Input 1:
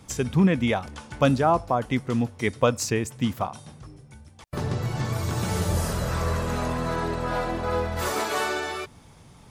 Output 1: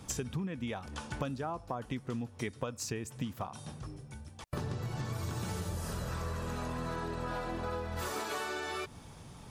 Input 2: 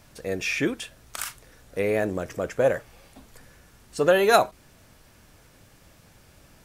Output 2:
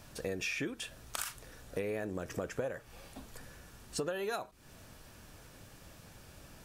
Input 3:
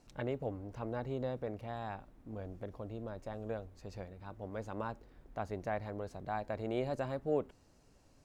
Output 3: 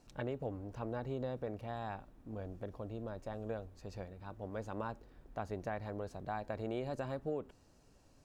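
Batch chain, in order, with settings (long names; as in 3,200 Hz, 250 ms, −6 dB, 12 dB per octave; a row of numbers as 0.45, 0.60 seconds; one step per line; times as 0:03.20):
notch filter 2,100 Hz, Q 15
dynamic equaliser 630 Hz, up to −3 dB, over −38 dBFS
downward compressor 20 to 1, threshold −33 dBFS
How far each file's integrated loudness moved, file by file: −12.5, −14.0, −2.0 LU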